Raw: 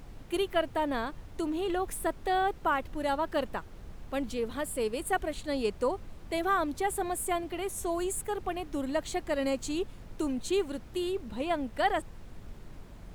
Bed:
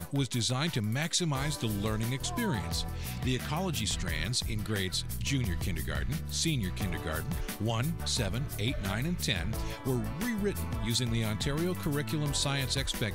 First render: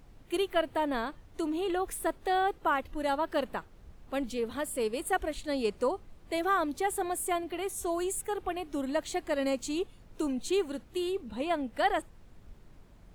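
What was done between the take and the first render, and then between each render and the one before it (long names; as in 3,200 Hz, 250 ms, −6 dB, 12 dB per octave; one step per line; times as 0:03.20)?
noise reduction from a noise print 8 dB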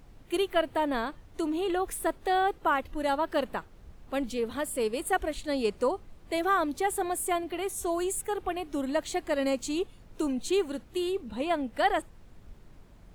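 level +2 dB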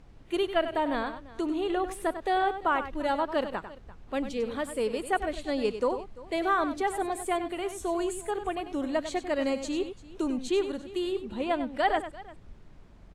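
high-frequency loss of the air 55 metres
on a send: multi-tap delay 97/343 ms −10.5/−19.5 dB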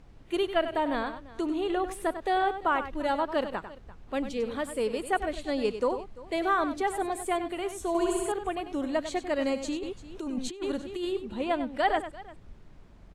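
0:07.88–0:08.32: flutter between parallel walls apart 11.2 metres, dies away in 1.4 s
0:09.68–0:11.05: compressor whose output falls as the input rises −31 dBFS, ratio −0.5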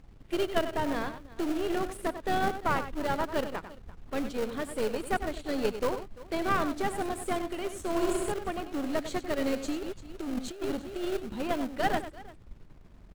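gain on one half-wave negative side −7 dB
in parallel at −7 dB: sample-rate reduction 1,000 Hz, jitter 20%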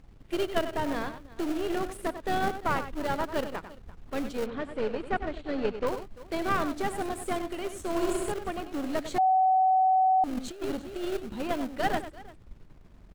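0:04.46–0:05.87: low-pass filter 3,100 Hz
0:09.18–0:10.24: beep over 754 Hz −19 dBFS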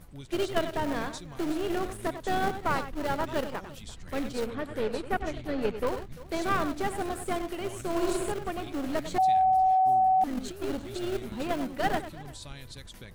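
mix in bed −14.5 dB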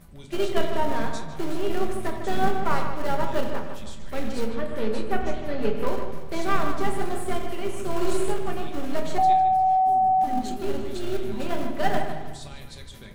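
feedback echo with a low-pass in the loop 152 ms, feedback 39%, low-pass 3,300 Hz, level −7.5 dB
rectangular room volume 280 cubic metres, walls furnished, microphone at 1.2 metres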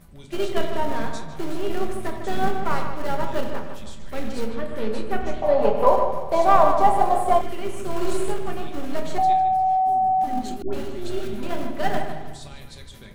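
0:05.42–0:07.41: flat-topped bell 750 Hz +15 dB 1.3 octaves
0:10.62–0:11.43: all-pass dispersion highs, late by 108 ms, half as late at 740 Hz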